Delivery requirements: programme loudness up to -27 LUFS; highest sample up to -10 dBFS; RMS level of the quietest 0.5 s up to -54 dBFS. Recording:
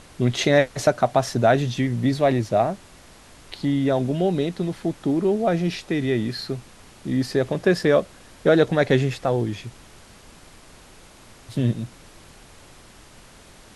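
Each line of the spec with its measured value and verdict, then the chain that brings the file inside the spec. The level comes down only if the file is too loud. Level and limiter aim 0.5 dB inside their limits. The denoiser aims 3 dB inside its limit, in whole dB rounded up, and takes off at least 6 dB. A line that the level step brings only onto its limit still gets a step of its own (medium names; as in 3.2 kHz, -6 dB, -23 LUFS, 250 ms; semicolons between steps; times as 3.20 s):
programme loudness -22.0 LUFS: fail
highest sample -4.5 dBFS: fail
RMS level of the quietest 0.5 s -48 dBFS: fail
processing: noise reduction 6 dB, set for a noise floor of -48 dBFS; trim -5.5 dB; peak limiter -10.5 dBFS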